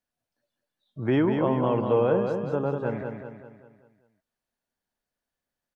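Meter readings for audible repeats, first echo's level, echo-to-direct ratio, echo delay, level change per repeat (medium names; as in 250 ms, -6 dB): 5, -5.5 dB, -4.5 dB, 195 ms, -6.5 dB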